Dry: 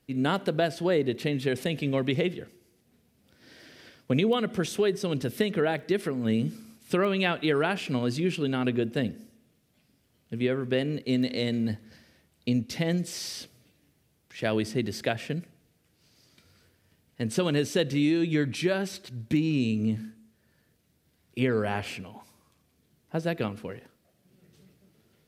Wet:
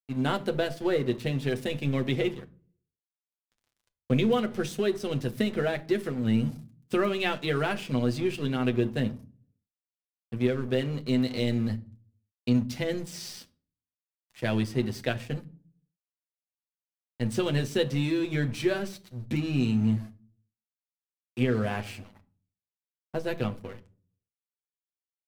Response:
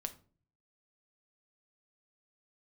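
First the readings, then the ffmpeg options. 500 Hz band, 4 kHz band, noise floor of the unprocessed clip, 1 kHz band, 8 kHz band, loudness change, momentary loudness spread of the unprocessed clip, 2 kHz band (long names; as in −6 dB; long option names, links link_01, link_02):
−1.5 dB, −2.0 dB, −69 dBFS, −1.5 dB, −4.0 dB, −0.5 dB, 11 LU, −1.5 dB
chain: -filter_complex "[0:a]aeval=exprs='sgn(val(0))*max(abs(val(0))-0.00708,0)':channel_layout=same,asplit=2[link_01][link_02];[1:a]atrim=start_sample=2205,lowshelf=frequency=140:gain=11.5,adelay=8[link_03];[link_02][link_03]afir=irnorm=-1:irlink=0,volume=-3.5dB[link_04];[link_01][link_04]amix=inputs=2:normalize=0,volume=-2dB"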